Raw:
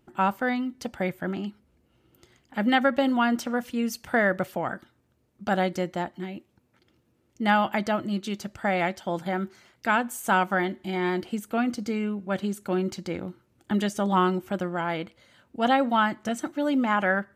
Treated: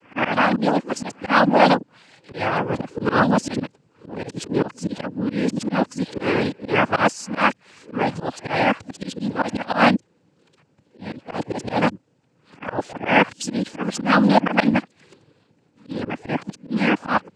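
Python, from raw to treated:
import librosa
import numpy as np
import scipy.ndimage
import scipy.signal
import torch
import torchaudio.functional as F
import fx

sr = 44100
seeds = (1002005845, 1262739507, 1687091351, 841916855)

y = x[::-1].copy()
y = fx.noise_vocoder(y, sr, seeds[0], bands=8)
y = fx.auto_swell(y, sr, attack_ms=104.0)
y = y * 10.0 ** (7.5 / 20.0)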